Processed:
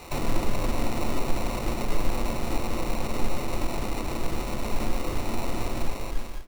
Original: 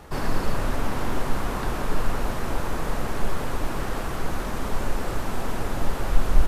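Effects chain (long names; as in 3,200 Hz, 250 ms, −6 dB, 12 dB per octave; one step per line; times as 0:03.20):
fade-out on the ending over 0.82 s
decimation without filtering 27×
on a send at −8 dB: convolution reverb RT60 0.35 s, pre-delay 3 ms
on the sum: one half of a high-frequency compander encoder only
level −2.5 dB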